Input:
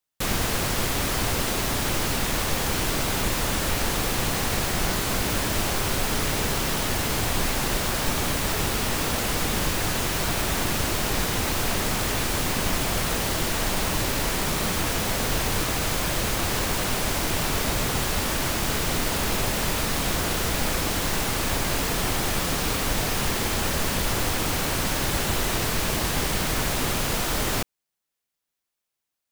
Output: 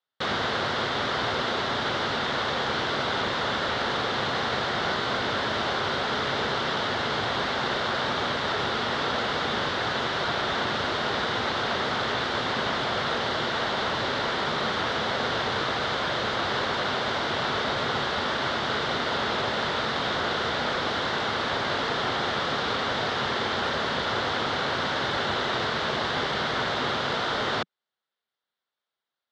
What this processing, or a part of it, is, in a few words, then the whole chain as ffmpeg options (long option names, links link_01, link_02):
kitchen radio: -af "highpass=180,equalizer=frequency=180:width_type=q:width=4:gain=-8,equalizer=frequency=300:width_type=q:width=4:gain=-8,equalizer=frequency=1400:width_type=q:width=4:gain=4,equalizer=frequency=2500:width_type=q:width=4:gain=-9,equalizer=frequency=3600:width_type=q:width=4:gain=4,lowpass=frequency=4000:width=0.5412,lowpass=frequency=4000:width=1.3066,volume=2dB"